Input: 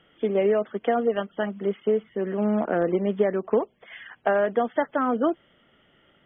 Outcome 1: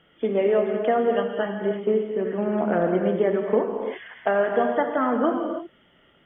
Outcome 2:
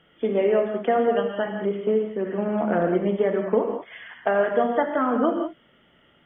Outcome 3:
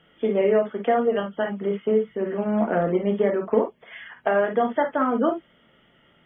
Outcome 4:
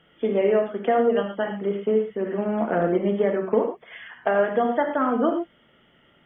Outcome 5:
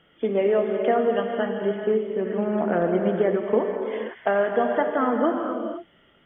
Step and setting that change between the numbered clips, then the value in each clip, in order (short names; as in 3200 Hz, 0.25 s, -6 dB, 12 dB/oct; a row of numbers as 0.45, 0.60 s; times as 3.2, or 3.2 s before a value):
non-linear reverb, gate: 360, 220, 80, 140, 530 ms